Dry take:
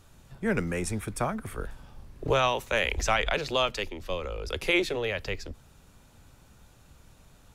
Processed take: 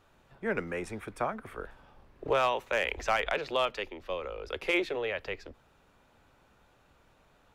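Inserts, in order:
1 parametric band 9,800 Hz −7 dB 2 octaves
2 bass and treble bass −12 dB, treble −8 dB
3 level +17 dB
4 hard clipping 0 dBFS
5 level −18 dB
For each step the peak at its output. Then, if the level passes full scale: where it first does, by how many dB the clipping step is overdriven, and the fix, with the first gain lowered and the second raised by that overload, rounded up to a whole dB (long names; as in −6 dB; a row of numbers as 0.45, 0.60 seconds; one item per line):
−12.5, −13.0, +4.0, 0.0, −18.0 dBFS
step 3, 4.0 dB
step 3 +13 dB, step 5 −14 dB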